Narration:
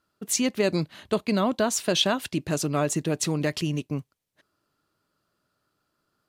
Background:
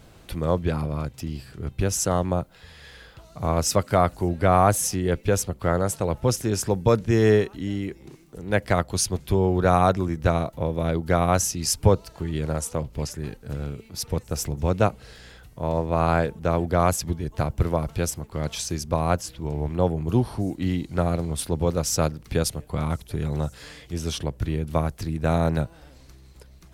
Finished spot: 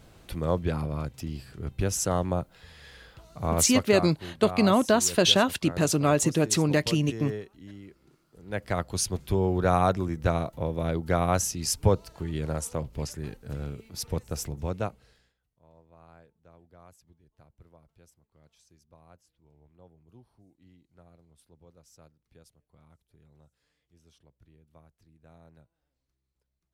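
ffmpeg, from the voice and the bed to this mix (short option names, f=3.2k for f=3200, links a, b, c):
-filter_complex "[0:a]adelay=3300,volume=2.5dB[a];[1:a]volume=9.5dB,afade=t=out:st=3.53:d=0.58:silence=0.211349,afade=t=in:st=8.29:d=0.74:silence=0.223872,afade=t=out:st=14.22:d=1.12:silence=0.0334965[b];[a][b]amix=inputs=2:normalize=0"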